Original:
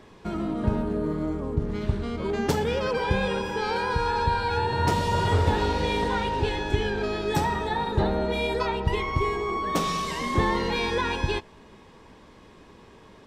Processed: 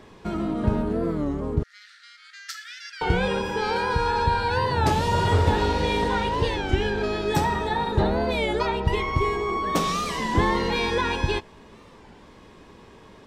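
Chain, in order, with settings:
0:01.63–0:03.03: Chebyshev high-pass with heavy ripple 1,300 Hz, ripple 9 dB
wow of a warped record 33 1/3 rpm, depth 160 cents
level +2 dB

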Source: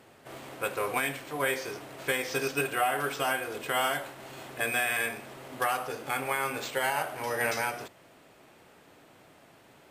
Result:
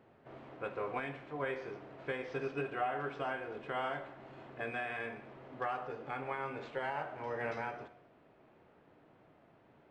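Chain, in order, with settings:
head-to-tape spacing loss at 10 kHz 39 dB
reverb whose tail is shaped and stops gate 320 ms falling, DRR 12 dB
level −4.5 dB

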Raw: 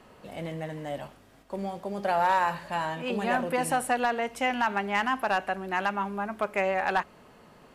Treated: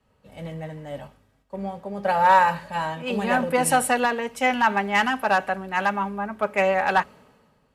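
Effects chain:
notch comb filter 350 Hz
multiband upward and downward expander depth 70%
level +6.5 dB

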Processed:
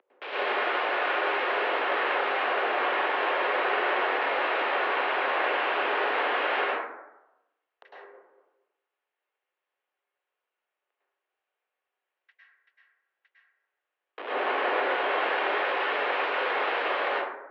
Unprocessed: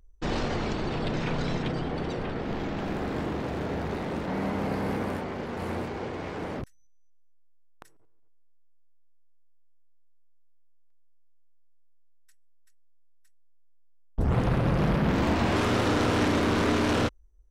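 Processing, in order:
downward compressor 5 to 1, threshold −37 dBFS, peak gain reduction 15 dB
wrap-around overflow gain 38.5 dB
dense smooth reverb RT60 0.93 s, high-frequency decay 0.35×, pre-delay 95 ms, DRR −9 dB
single-sideband voice off tune +71 Hz 310–3,100 Hz
level +9 dB

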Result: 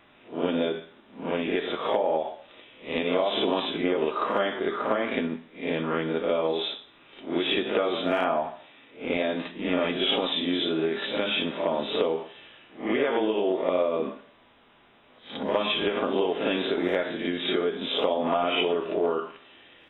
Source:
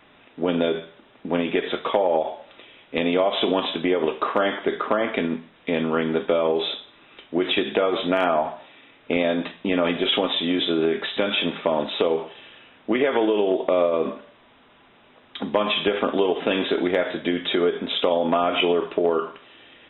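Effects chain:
peak hold with a rise ahead of every peak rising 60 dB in 0.32 s
backwards echo 56 ms −5.5 dB
level −6 dB

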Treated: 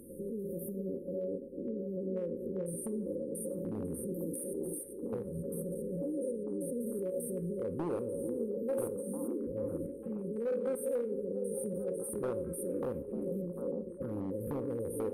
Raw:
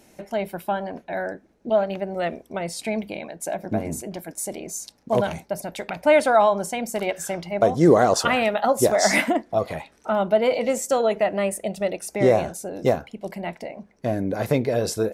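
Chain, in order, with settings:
spectrum averaged block by block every 100 ms
downward compressor 3 to 1, threshold −34 dBFS, peak gain reduction 15.5 dB
brick-wall band-stop 560–8,500 Hz
hard clipping −29.5 dBFS, distortion −17 dB
brickwall limiter −38 dBFS, peak gain reduction 8.5 dB
parametric band 1,000 Hz +6.5 dB 2.1 octaves
echo through a band-pass that steps 447 ms, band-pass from 330 Hz, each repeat 0.7 octaves, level −4 dB
coupled-rooms reverb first 0.44 s, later 2 s, from −17 dB, DRR 12.5 dB
level +5 dB

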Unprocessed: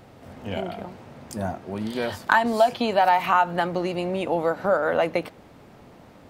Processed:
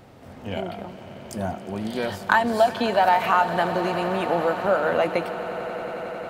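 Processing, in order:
echo that builds up and dies away 90 ms, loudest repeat 8, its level −18 dB

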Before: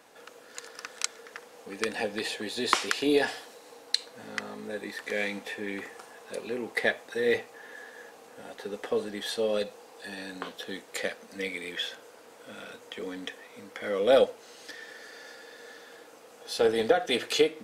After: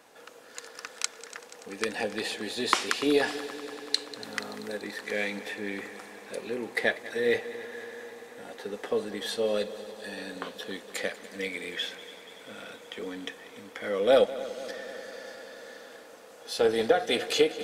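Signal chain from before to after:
0:04.24–0:04.77: high-shelf EQ 9,300 Hz +9.5 dB
echo machine with several playback heads 96 ms, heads second and third, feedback 74%, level −17.5 dB

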